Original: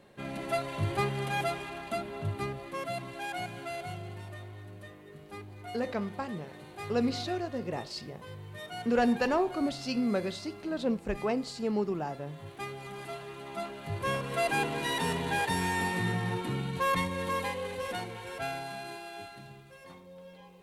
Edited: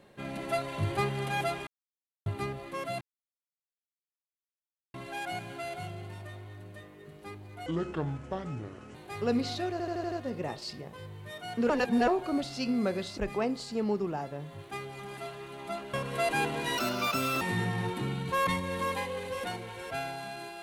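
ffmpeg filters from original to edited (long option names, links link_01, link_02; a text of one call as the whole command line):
ffmpeg -i in.wav -filter_complex "[0:a]asplit=17[link_01][link_02][link_03][link_04][link_05][link_06][link_07][link_08][link_09][link_10][link_11][link_12][link_13][link_14][link_15][link_16][link_17];[link_01]atrim=end=1.67,asetpts=PTS-STARTPTS,afade=type=out:start_time=1.666:duration=0.004:curve=hsin[link_18];[link_02]atrim=start=1.67:end=2.26,asetpts=PTS-STARTPTS,volume=0[link_19];[link_03]atrim=start=2.26:end=3.01,asetpts=PTS-STARTPTS,afade=type=in:duration=0.004:curve=hsin,afade=type=out:start_time=0.746:duration=0.004:curve=hsin,apad=pad_dur=1.93[link_20];[link_04]atrim=start=3.01:end=5.734,asetpts=PTS-STARTPTS,afade=type=in:duration=0.004:curve=hsin[link_21];[link_05]atrim=start=5.73:end=6.63,asetpts=PTS-STARTPTS,asetrate=30870,aresample=44100[link_22];[link_06]atrim=start=6.626:end=7.482[link_23];[link_07]atrim=start=7.398:end=7.482[link_24];[link_08]atrim=start=7.398:end=7.482[link_25];[link_09]atrim=start=7.398:end=7.482[link_26];[link_10]atrim=start=7.398:end=7.482[link_27];[link_11]atrim=start=7.398:end=8.982[link_28];[link_12]atrim=start=8.978:end=9.362,asetpts=PTS-STARTPTS,areverse[link_29];[link_13]atrim=start=9.358:end=10.462[link_30];[link_14]atrim=start=11.048:end=13.812[link_31];[link_15]atrim=start=14.118:end=14.964[link_32];[link_16]atrim=start=14.96:end=15.89,asetpts=PTS-STARTPTS,asetrate=64386,aresample=44100,atrim=end_sample=28091,asetpts=PTS-STARTPTS[link_33];[link_17]atrim=start=15.886[link_34];[link_18][link_19][link_20][link_21]concat=n=4:v=0:a=1[link_35];[link_35][link_22]acrossfade=duration=0.004:curve1=hsin:curve2=hsin[link_36];[link_36][link_23]acrossfade=duration=0.004:curve1=hsin:curve2=hsin[link_37];[link_37][link_24]acrossfade=duration=0.004:curve1=hsin:curve2=hsin[link_38];[link_38][link_25]acrossfade=duration=0.004:curve1=hsin:curve2=hsin[link_39];[link_39][link_26]acrossfade=duration=0.004:curve1=hsin:curve2=hsin[link_40];[link_40][link_27]acrossfade=duration=0.004:curve1=hsin:curve2=hsin[link_41];[link_41][link_28]acrossfade=duration=0.004:curve1=hsin:curve2=hsin[link_42];[link_42][link_29]acrossfade=duration=0.004:curve1=hsin:curve2=hsin[link_43];[link_43][link_30]acrossfade=duration=0.004:curve1=hsin:curve2=hsin[link_44];[link_44][link_31]acrossfade=duration=0.004:curve1=hsin:curve2=hsin[link_45];[link_45][link_32]acrossfade=duration=0.004:curve1=hsin:curve2=hsin[link_46];[link_46][link_33]acrossfade=duration=0.004:curve1=hsin:curve2=hsin[link_47];[link_47][link_34]acrossfade=duration=0.004:curve1=hsin:curve2=hsin" out.wav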